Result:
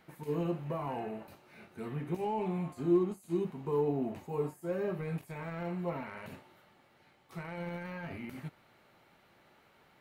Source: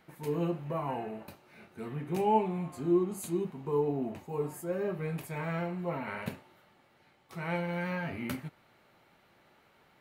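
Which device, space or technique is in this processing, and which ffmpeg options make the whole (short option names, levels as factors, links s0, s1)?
de-esser from a sidechain: -filter_complex "[0:a]asplit=2[s0][s1];[s1]highpass=4000,apad=whole_len=441231[s2];[s0][s2]sidechaincompress=threshold=0.00126:ratio=16:attack=1.4:release=21"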